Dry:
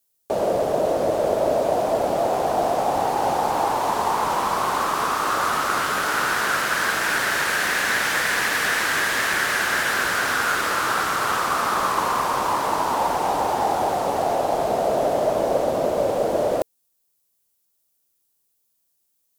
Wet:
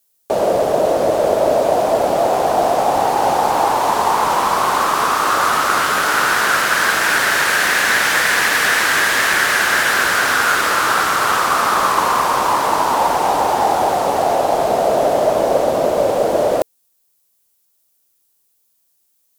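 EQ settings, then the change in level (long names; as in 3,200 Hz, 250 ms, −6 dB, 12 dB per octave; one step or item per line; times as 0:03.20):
low-shelf EQ 360 Hz −4 dB
+7.0 dB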